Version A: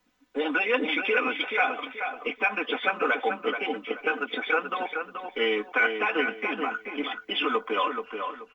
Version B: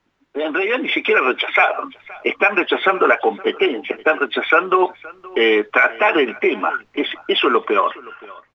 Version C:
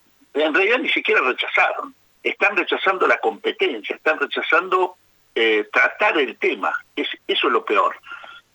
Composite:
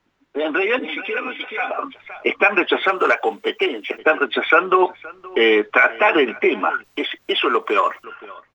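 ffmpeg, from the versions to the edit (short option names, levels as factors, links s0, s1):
-filter_complex "[2:a]asplit=2[s0][s1];[1:a]asplit=4[s2][s3][s4][s5];[s2]atrim=end=0.792[s6];[0:a]atrim=start=0.788:end=1.712[s7];[s3]atrim=start=1.708:end=2.832[s8];[s0]atrim=start=2.828:end=3.982[s9];[s4]atrim=start=3.978:end=6.842[s10];[s1]atrim=start=6.838:end=8.042[s11];[s5]atrim=start=8.038[s12];[s6][s7]acrossfade=d=0.004:c1=hsin:c2=hsin[s13];[s13][s8]acrossfade=d=0.004:c1=hsin:c2=hsin[s14];[s14][s9]acrossfade=d=0.004:c1=hsin:c2=hsin[s15];[s15][s10]acrossfade=d=0.004:c1=hsin:c2=hsin[s16];[s16][s11]acrossfade=d=0.004:c1=hsin:c2=hsin[s17];[s17][s12]acrossfade=d=0.004:c1=hsin:c2=hsin"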